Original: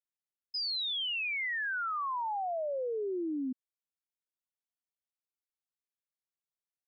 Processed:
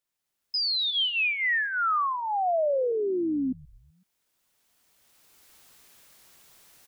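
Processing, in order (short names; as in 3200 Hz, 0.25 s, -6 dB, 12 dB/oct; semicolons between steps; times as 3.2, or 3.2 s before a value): recorder AGC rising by 15 dB/s; 0.9–2.92 comb 1.6 ms, depth 54%; compressor 1.5:1, threshold -37 dBFS, peak gain reduction 3 dB; frequency-shifting echo 0.126 s, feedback 57%, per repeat -110 Hz, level -22 dB; gain +9 dB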